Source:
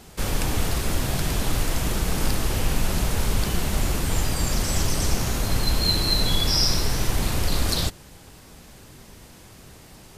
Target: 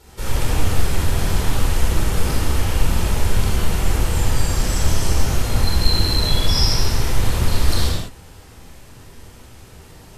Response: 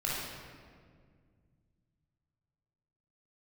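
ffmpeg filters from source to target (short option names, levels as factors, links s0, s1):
-filter_complex "[1:a]atrim=start_sample=2205,afade=t=out:st=0.18:d=0.01,atrim=end_sample=8379,asetrate=28665,aresample=44100[s0];[0:a][s0]afir=irnorm=-1:irlink=0,volume=0.531"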